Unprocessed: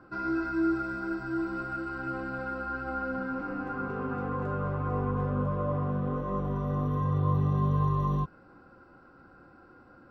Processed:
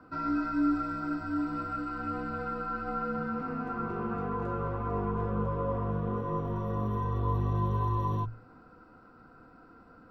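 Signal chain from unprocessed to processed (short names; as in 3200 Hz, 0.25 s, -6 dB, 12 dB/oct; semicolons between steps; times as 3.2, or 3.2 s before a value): notches 50/100/150 Hz; frequency shift -37 Hz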